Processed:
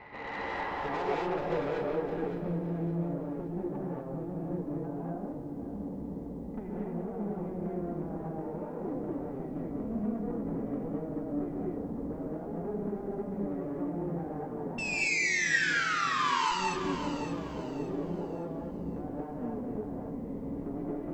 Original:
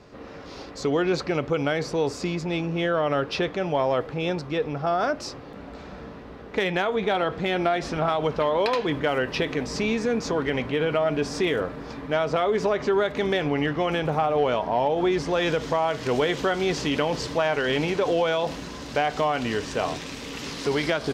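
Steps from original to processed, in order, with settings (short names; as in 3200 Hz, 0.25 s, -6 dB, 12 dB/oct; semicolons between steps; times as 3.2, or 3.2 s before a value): compressor 2.5:1, threshold -34 dBFS, peak gain reduction 11 dB; low-pass sweep 2100 Hz -> 260 Hz, 0.15–2.29; painted sound fall, 14.78–16.51, 860–2700 Hz -27 dBFS; small resonant body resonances 870/2000 Hz, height 18 dB, ringing for 25 ms; tube stage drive 30 dB, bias 0.65; brick-wall FIR low-pass 8000 Hz; on a send: split-band echo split 430 Hz, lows 0.691 s, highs 0.213 s, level -15 dB; on the sum: non-linear reverb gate 0.27 s rising, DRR -4.5 dB; lo-fi delay 0.566 s, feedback 35%, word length 10-bit, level -10.5 dB; gain -3.5 dB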